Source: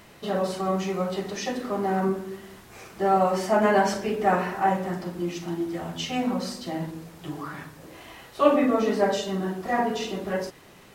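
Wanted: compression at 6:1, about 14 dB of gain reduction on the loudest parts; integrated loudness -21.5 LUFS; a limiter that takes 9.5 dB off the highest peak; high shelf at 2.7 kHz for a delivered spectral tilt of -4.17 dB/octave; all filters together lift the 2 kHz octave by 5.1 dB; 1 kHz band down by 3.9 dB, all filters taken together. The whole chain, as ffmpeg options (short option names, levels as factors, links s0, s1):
-af "equalizer=f=1000:t=o:g=-8,equalizer=f=2000:t=o:g=7,highshelf=f=2700:g=5.5,acompressor=threshold=0.0316:ratio=6,volume=6.68,alimiter=limit=0.224:level=0:latency=1"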